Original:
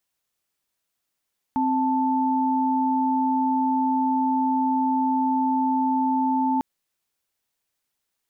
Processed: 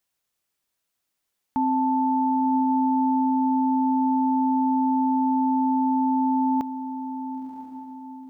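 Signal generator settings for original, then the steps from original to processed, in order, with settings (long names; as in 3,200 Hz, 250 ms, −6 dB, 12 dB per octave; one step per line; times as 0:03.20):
held notes C4/A5 sine, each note −22 dBFS 5.05 s
feedback delay with all-pass diffusion 1,000 ms, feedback 43%, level −10 dB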